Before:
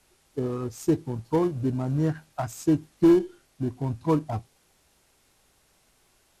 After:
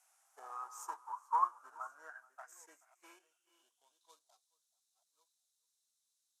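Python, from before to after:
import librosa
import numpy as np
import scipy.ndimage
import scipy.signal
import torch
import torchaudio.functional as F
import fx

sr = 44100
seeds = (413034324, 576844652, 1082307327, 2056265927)

p1 = fx.reverse_delay(x, sr, ms=666, wet_db=-13.5)
p2 = fx.filter_sweep_bandpass(p1, sr, from_hz=2200.0, to_hz=530.0, start_s=0.0, end_s=2.38, q=1.9)
p3 = fx.band_shelf(p2, sr, hz=2900.0, db=-15.5, octaves=1.7)
p4 = fx.filter_sweep_highpass(p3, sr, from_hz=710.0, to_hz=3900.0, start_s=0.29, end_s=4.22, q=6.9)
p5 = scipy.signal.lfilter([1.0, -0.97], [1.0], p4)
p6 = p5 + fx.echo_single(p5, sr, ms=429, db=-22.5, dry=0)
y = F.gain(torch.from_numpy(p6), 13.0).numpy()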